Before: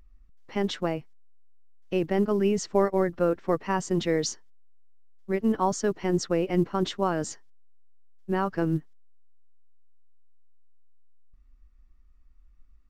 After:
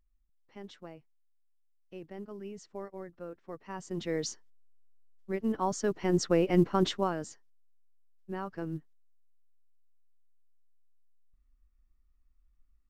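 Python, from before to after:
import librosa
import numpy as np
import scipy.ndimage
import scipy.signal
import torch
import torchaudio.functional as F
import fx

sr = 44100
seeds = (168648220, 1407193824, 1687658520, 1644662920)

y = fx.gain(x, sr, db=fx.line((3.46, -19.0), (4.19, -6.5), (5.55, -6.5), (6.35, 0.0), (6.9, 0.0), (7.3, -11.0)))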